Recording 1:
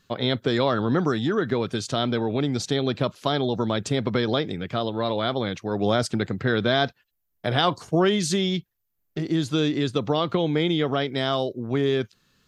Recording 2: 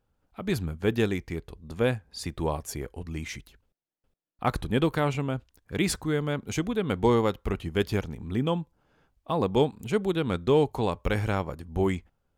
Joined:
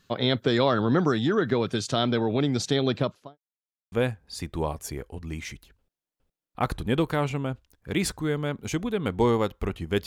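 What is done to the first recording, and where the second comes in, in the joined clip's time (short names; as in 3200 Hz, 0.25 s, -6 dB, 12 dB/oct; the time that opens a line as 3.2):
recording 1
2.92–3.38 studio fade out
3.38–3.92 mute
3.92 switch to recording 2 from 1.76 s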